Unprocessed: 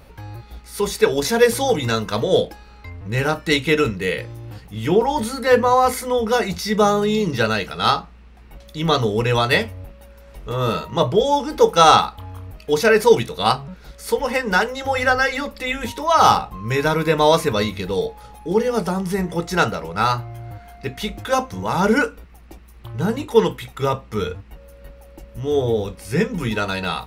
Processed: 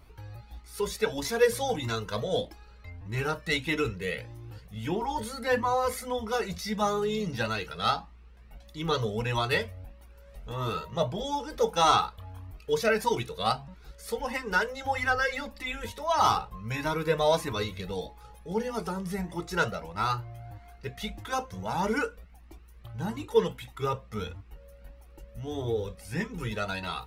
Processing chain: Shepard-style flanger rising 1.6 Hz; trim -5.5 dB

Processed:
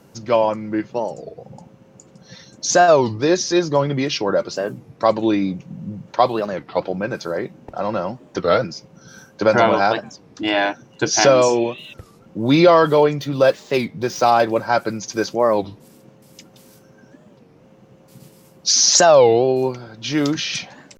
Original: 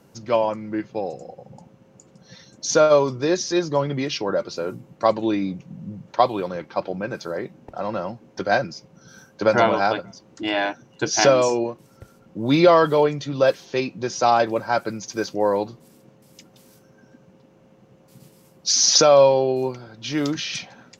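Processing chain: 13.20–14.52 s: median filter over 5 samples; in parallel at -0.5 dB: peak limiter -10.5 dBFS, peak gain reduction 7.5 dB; 11.52–11.93 s: on the sum: spectral replace 1.6–3.7 kHz before; warped record 33 1/3 rpm, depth 250 cents; trim -1.5 dB

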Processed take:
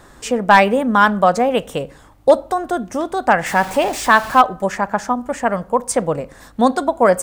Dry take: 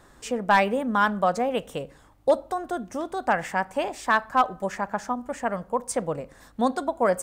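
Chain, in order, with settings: 3.46–4.41 s: jump at every zero crossing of -34.5 dBFS; trim +9 dB

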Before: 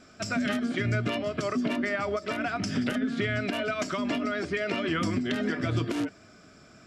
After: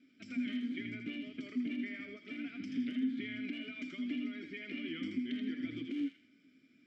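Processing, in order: vowel filter i; feedback echo behind a high-pass 81 ms, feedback 35%, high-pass 1.6 kHz, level -4 dB; trim -2 dB

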